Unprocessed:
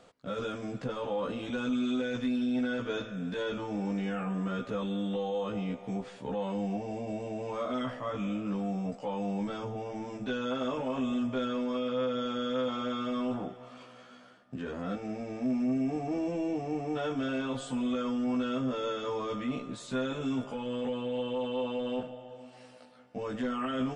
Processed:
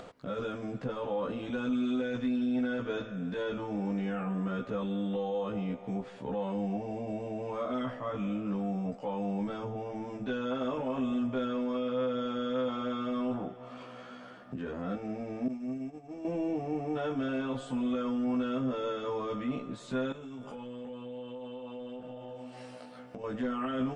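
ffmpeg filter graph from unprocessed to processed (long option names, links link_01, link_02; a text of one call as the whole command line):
ffmpeg -i in.wav -filter_complex "[0:a]asettb=1/sr,asplit=3[link_01][link_02][link_03];[link_01]atrim=end=15.484[link_04];[link_02]atrim=start=15.48:end=16.25,asetpts=PTS-STARTPTS,afade=type=in:duration=0.004:curve=qsin,afade=type=out:start_time=0.766:duration=0.004:curve=qsin,agate=range=-33dB:threshold=-23dB:ratio=3:release=100:detection=peak,highshelf=frequency=5100:gain=12[link_05];[link_03]atrim=start=16.246[link_06];[link_04][link_05]acrossfade=duration=0.004:curve1=hsin:curve2=qsin[link_07];[link_07][link_06]acrossfade=duration=0.004:curve1=qsin:curve2=hsin,asettb=1/sr,asplit=3[link_08][link_09][link_10];[link_08]atrim=end=20.124[link_11];[link_09]atrim=start=20.12:end=23.24,asetpts=PTS-STARTPTS,afade=type=in:duration=0.004:curve=qsin,afade=type=out:start_time=3.116:duration=0.004:curve=qsin,highshelf=frequency=6300:gain=8,acompressor=threshold=-43dB:ratio=5:attack=3.2:release=140:knee=1:detection=peak,asplit=2[link_12][link_13];[link_13]adelay=32,volume=-10.5dB[link_14];[link_12][link_14]amix=inputs=2:normalize=0,atrim=end_sample=137592[link_15];[link_10]atrim=start=23.236[link_16];[link_11][link_15]acrossfade=duration=0.004:curve1=hsin:curve2=qsin[link_17];[link_17][link_16]acrossfade=duration=0.004:curve1=qsin:curve2=hsin,acompressor=mode=upward:threshold=-37dB:ratio=2.5,highshelf=frequency=3400:gain=-9.5" out.wav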